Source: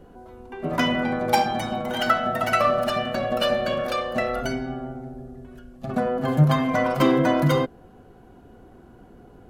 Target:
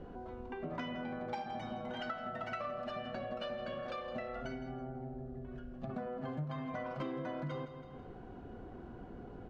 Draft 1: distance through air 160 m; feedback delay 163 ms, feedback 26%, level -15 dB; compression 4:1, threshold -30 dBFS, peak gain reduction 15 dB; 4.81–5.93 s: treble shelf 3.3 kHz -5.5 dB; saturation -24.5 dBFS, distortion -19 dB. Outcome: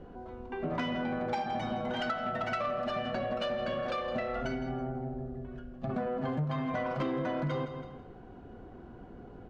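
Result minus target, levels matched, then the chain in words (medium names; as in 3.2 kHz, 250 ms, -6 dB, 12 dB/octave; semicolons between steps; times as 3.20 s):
compression: peak gain reduction -8.5 dB
distance through air 160 m; feedback delay 163 ms, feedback 26%, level -15 dB; compression 4:1, threshold -41.5 dBFS, peak gain reduction 23.5 dB; 4.81–5.93 s: treble shelf 3.3 kHz -5.5 dB; saturation -24.5 dBFS, distortion -34 dB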